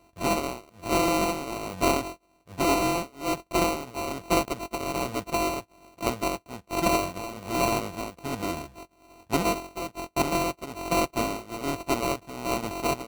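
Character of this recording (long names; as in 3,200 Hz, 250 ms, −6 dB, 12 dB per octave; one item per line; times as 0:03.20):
a buzz of ramps at a fixed pitch in blocks of 64 samples
tremolo triangle 1.2 Hz, depth 75%
aliases and images of a low sample rate 1,700 Hz, jitter 0%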